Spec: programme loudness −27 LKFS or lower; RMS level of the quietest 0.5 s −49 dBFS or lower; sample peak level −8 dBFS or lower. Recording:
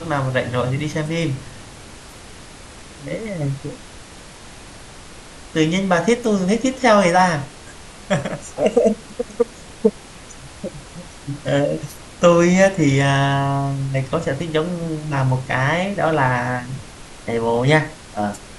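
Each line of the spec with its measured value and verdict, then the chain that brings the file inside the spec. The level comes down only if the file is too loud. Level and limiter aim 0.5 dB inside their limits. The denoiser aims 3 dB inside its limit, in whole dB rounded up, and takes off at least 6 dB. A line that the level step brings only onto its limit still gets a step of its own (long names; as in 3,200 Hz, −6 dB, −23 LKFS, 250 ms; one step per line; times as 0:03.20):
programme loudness −19.5 LKFS: out of spec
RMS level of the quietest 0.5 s −39 dBFS: out of spec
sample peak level −2.5 dBFS: out of spec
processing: broadband denoise 6 dB, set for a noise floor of −39 dBFS
level −8 dB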